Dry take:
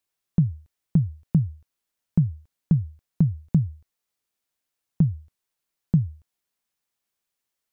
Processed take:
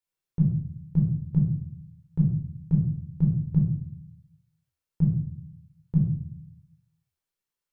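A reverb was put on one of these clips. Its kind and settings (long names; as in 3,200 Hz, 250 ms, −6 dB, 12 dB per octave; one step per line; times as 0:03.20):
rectangular room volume 820 cubic metres, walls furnished, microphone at 4.4 metres
level −11.5 dB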